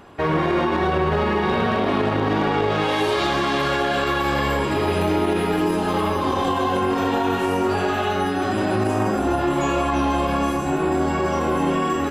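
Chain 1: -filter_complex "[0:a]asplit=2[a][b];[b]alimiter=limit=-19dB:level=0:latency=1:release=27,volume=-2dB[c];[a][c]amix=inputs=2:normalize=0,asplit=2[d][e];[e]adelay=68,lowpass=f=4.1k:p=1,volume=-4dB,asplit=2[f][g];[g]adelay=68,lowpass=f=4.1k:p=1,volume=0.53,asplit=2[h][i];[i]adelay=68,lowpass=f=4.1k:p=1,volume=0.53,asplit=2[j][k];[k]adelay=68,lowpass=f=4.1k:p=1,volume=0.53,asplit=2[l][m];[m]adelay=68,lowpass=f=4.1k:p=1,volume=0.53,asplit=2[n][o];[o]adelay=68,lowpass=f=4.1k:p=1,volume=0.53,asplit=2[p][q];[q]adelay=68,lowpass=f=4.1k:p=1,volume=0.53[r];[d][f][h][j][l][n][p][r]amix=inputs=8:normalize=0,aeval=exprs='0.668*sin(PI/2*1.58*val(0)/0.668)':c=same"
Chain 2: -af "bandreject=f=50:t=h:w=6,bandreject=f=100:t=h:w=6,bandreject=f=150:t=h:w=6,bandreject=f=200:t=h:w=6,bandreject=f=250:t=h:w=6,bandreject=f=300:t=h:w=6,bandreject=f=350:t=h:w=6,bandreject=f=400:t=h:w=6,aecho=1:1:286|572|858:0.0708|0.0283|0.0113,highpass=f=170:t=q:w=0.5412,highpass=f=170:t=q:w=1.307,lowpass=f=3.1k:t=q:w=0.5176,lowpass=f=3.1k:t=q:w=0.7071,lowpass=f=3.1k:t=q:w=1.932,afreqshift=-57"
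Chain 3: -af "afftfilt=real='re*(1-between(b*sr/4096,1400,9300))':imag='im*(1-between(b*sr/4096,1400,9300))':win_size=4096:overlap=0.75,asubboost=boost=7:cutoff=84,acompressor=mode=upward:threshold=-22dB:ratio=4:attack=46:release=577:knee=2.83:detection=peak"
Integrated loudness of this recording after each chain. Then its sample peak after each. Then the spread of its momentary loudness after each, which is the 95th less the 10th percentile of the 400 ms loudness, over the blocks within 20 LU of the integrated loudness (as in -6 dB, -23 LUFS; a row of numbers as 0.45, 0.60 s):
-9.5, -22.0, -21.5 LUFS; -3.5, -8.0, -3.0 dBFS; 1, 1, 3 LU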